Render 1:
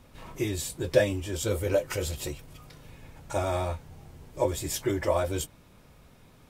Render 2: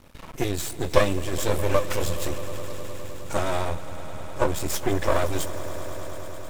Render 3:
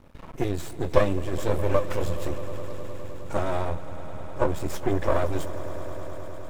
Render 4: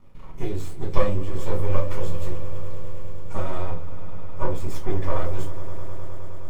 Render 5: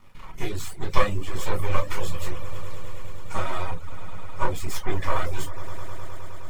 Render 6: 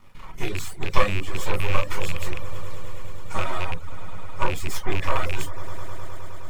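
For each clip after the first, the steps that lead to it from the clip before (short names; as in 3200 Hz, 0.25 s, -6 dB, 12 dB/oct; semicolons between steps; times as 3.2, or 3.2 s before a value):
half-wave rectifier; swelling echo 0.104 s, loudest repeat 5, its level -18 dB; gain +7 dB
high shelf 2300 Hz -12 dB
reverb RT60 0.30 s, pre-delay 5 ms, DRR -1 dB; gain -9 dB
reverb removal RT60 0.52 s; EQ curve 530 Hz 0 dB, 830 Hz +6 dB, 1800 Hz +11 dB; gain -2 dB
rattling part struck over -30 dBFS, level -19 dBFS; gain +1 dB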